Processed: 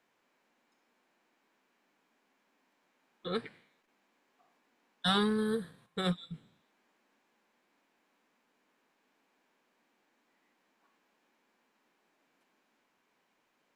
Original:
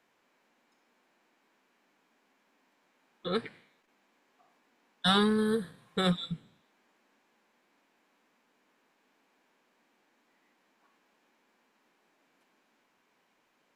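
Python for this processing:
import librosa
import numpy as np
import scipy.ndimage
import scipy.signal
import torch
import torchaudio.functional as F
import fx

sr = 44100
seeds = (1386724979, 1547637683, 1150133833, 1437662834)

y = fx.upward_expand(x, sr, threshold_db=-39.0, expansion=1.5, at=(5.86, 6.34))
y = F.gain(torch.from_numpy(y), -3.5).numpy()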